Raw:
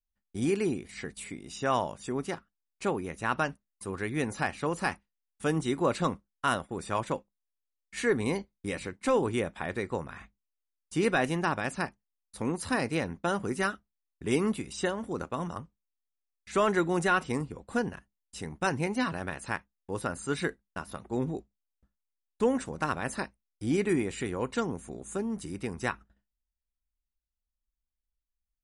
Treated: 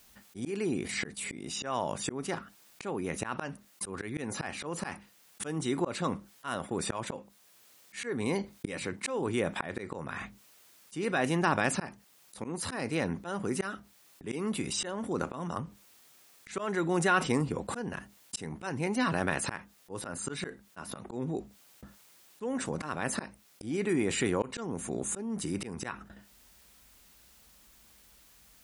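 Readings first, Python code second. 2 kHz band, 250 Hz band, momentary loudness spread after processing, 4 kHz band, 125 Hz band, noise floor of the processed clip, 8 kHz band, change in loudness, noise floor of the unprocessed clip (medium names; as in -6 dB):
-2.0 dB, -2.0 dB, 14 LU, +1.0 dB, -1.5 dB, -62 dBFS, +4.5 dB, -2.0 dB, under -85 dBFS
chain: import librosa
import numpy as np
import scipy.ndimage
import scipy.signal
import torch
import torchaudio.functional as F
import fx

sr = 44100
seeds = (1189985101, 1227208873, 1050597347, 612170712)

y = scipy.signal.sosfilt(scipy.signal.butter(2, 110.0, 'highpass', fs=sr, output='sos'), x)
y = fx.auto_swell(y, sr, attack_ms=590.0)
y = fx.env_flatten(y, sr, amount_pct=50)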